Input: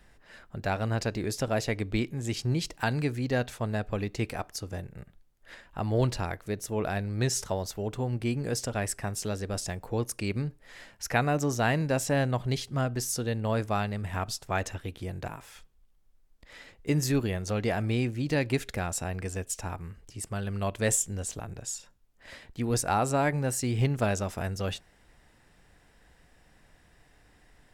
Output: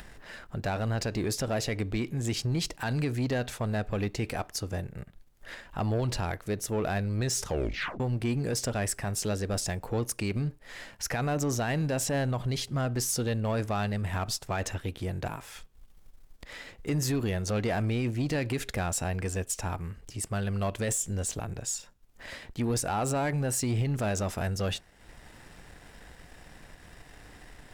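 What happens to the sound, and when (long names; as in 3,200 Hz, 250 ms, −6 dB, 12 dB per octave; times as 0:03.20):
0:07.44: tape stop 0.56 s
whole clip: brickwall limiter −22 dBFS; leveller curve on the samples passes 1; upward compression, threshold −39 dBFS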